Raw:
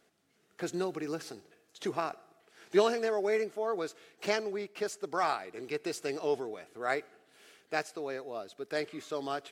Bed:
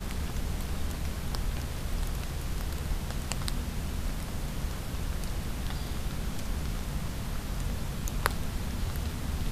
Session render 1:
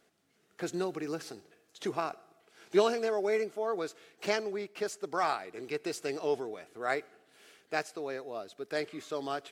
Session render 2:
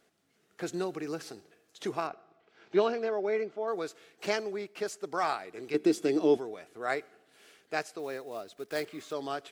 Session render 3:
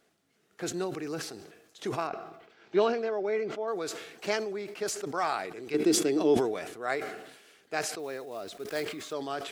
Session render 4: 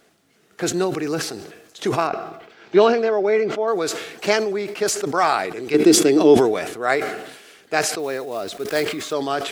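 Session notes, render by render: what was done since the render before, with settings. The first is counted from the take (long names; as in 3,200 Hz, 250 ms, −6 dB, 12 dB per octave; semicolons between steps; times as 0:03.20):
0:01.95–0:03.61: notch filter 1,800 Hz
0:02.07–0:03.68: high-frequency loss of the air 180 metres; 0:05.74–0:06.37: hollow resonant body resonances 220/310/3,400 Hz, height 17 dB, ringing for 65 ms; 0:07.99–0:09.14: one scale factor per block 5 bits
level that may fall only so fast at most 59 dB per second
level +11.5 dB; brickwall limiter −3 dBFS, peak gain reduction 1.5 dB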